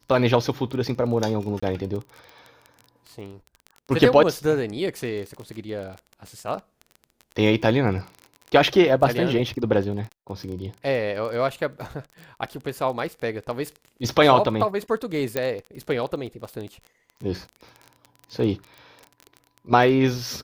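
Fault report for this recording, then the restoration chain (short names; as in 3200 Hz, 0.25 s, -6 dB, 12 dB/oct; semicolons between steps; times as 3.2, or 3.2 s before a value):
crackle 22/s -31 dBFS
1.6–1.62 gap 25 ms
15.37 pop -10 dBFS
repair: de-click; interpolate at 1.6, 25 ms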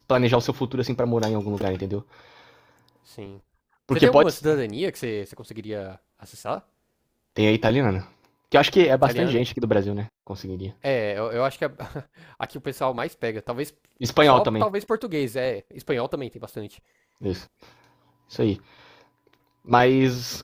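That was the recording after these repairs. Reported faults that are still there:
none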